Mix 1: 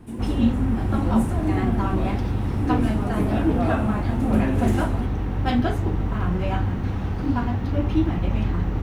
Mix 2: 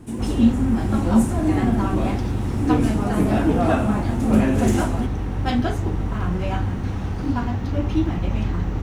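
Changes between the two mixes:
background +4.5 dB; master: add peaking EQ 6.6 kHz +7 dB 0.99 oct

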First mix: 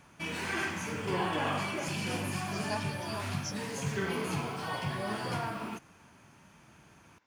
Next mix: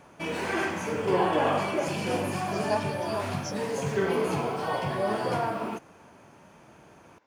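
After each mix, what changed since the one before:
master: add peaking EQ 530 Hz +11.5 dB 1.9 oct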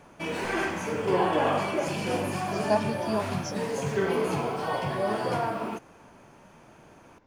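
speech: remove high-pass 800 Hz 6 dB/octave

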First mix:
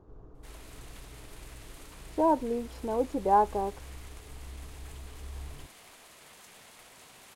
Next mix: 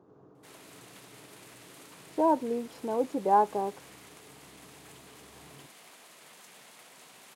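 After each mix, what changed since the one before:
master: add high-pass 140 Hz 24 dB/octave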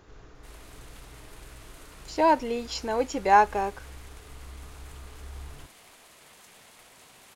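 speech: remove FFT filter 340 Hz 0 dB, 1.1 kHz -6 dB, 2 kHz -24 dB; master: remove high-pass 140 Hz 24 dB/octave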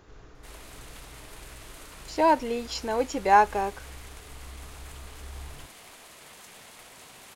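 background +4.5 dB

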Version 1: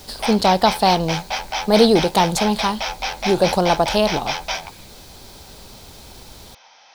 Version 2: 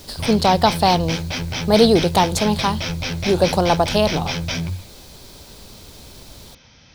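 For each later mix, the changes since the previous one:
background: remove resonant high-pass 790 Hz, resonance Q 4.2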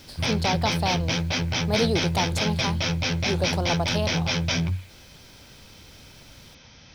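speech -11.0 dB

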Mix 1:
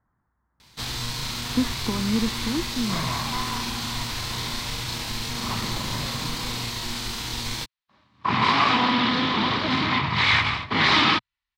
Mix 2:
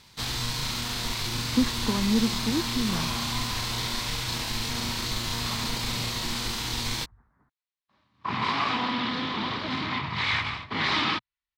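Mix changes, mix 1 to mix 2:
first sound: entry -0.60 s; second sound -7.0 dB

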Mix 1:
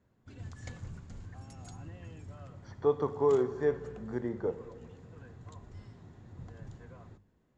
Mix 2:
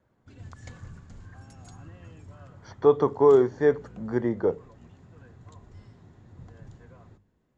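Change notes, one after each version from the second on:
speech +10.5 dB; reverb: off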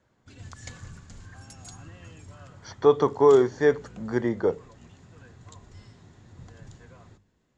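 master: add treble shelf 2.2 kHz +11.5 dB

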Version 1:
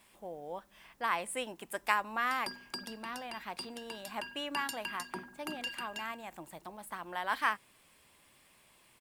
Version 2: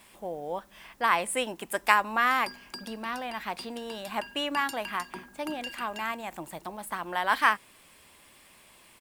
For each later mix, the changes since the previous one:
speech +8.0 dB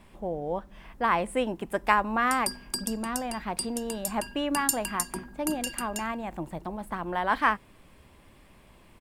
background: remove distance through air 360 m; master: add tilt EQ -3.5 dB/octave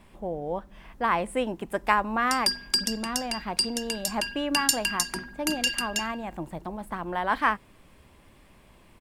background: add high-order bell 3.1 kHz +11.5 dB 2.3 oct

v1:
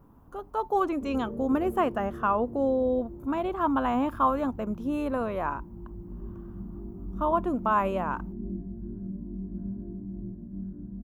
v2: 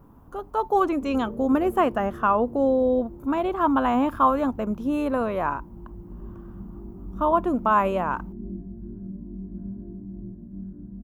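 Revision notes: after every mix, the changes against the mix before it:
speech +4.5 dB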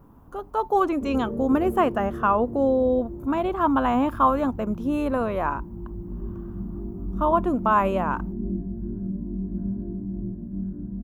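background +6.5 dB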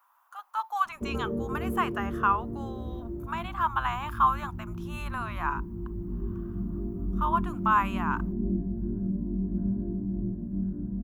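speech: add inverse Chebyshev high-pass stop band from 390 Hz, stop band 50 dB

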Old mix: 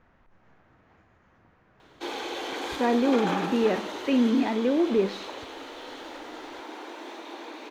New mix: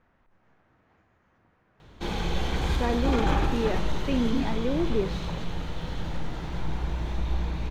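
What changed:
speech -4.5 dB; background: remove steep high-pass 260 Hz 72 dB/octave

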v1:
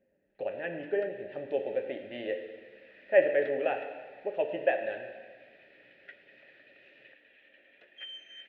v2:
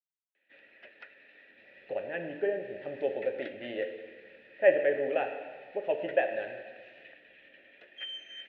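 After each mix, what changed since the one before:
speech: entry +1.50 s; first sound +3.5 dB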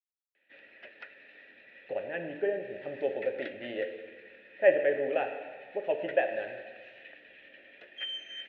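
first sound +3.0 dB; second sound: muted

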